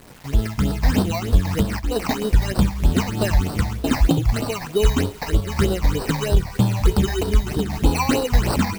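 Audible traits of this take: aliases and images of a low sample rate 3400 Hz, jitter 0%; phasing stages 8, 3.2 Hz, lowest notch 380–2200 Hz; a quantiser's noise floor 8-bit, dither none; noise-modulated level

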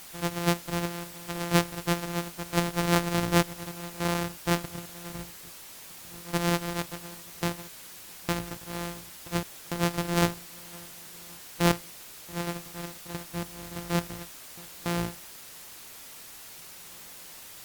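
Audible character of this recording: a buzz of ramps at a fixed pitch in blocks of 256 samples; random-step tremolo, depth 100%; a quantiser's noise floor 8-bit, dither triangular; Opus

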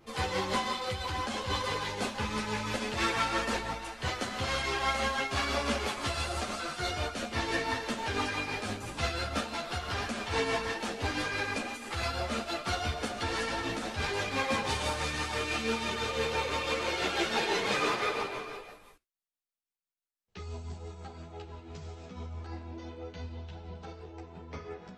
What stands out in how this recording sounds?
tremolo triangle 6 Hz, depth 50%; a shimmering, thickened sound

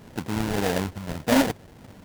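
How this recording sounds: phasing stages 2, 1.7 Hz, lowest notch 410–1300 Hz; aliases and images of a low sample rate 1200 Hz, jitter 20%

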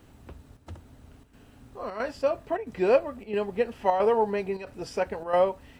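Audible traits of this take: a quantiser's noise floor 12-bit, dither none; chopped level 1.5 Hz, depth 60%, duty 85%

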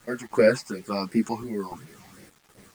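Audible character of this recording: random-step tremolo, depth 70%; phasing stages 8, 2.8 Hz, lowest notch 410–1100 Hz; a quantiser's noise floor 10-bit, dither none; a shimmering, thickened sound

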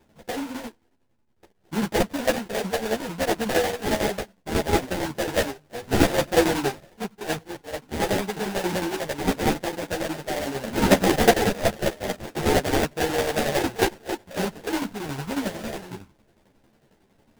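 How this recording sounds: tremolo saw down 11 Hz, depth 70%; aliases and images of a low sample rate 1200 Hz, jitter 20%; a shimmering, thickened sound

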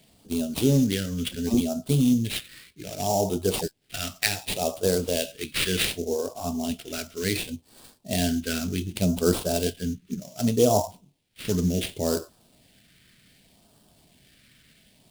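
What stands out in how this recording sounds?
aliases and images of a low sample rate 6400 Hz, jitter 20%; phasing stages 2, 0.67 Hz, lowest notch 780–1900 Hz

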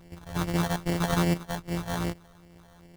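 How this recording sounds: a buzz of ramps at a fixed pitch in blocks of 256 samples; phasing stages 12, 2.5 Hz, lowest notch 320–1400 Hz; aliases and images of a low sample rate 2500 Hz, jitter 0%

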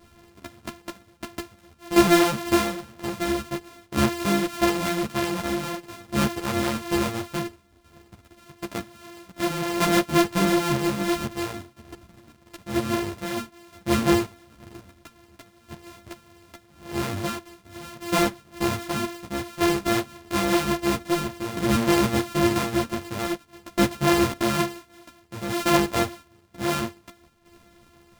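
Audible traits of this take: a buzz of ramps at a fixed pitch in blocks of 128 samples; tremolo saw down 0.51 Hz, depth 70%; a shimmering, thickened sound

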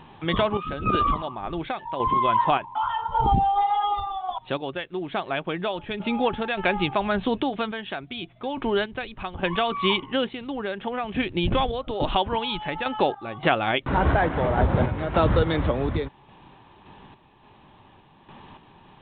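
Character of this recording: random-step tremolo, depth 75%; A-law

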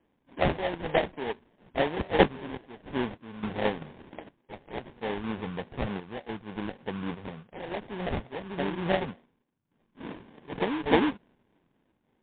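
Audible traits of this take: phasing stages 8, 3.4 Hz, lowest notch 570–1900 Hz; random-step tremolo, depth 80%; aliases and images of a low sample rate 1300 Hz, jitter 20%; MP3

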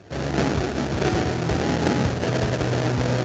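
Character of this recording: aliases and images of a low sample rate 1100 Hz, jitter 20%; Speex

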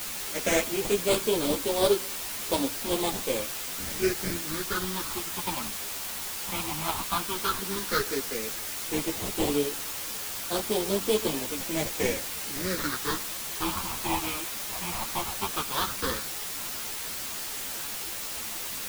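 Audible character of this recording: aliases and images of a low sample rate 2800 Hz, jitter 20%; phasing stages 6, 0.12 Hz, lowest notch 420–1900 Hz; a quantiser's noise floor 6-bit, dither triangular; a shimmering, thickened sound

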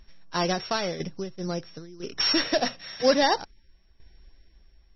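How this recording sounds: a buzz of ramps at a fixed pitch in blocks of 8 samples; tremolo saw down 1 Hz, depth 65%; MP3

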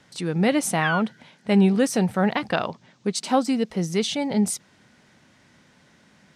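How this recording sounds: noise floor -58 dBFS; spectral tilt -5.0 dB/oct

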